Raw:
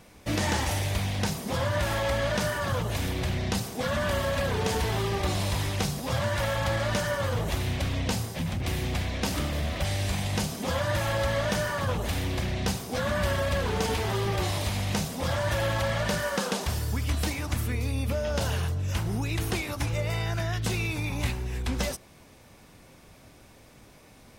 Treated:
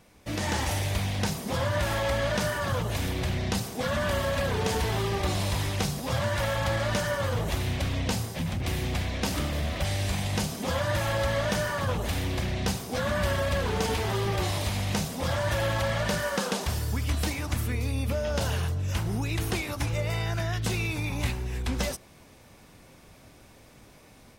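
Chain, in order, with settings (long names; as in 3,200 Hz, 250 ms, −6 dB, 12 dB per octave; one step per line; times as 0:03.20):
automatic gain control gain up to 5 dB
level −5 dB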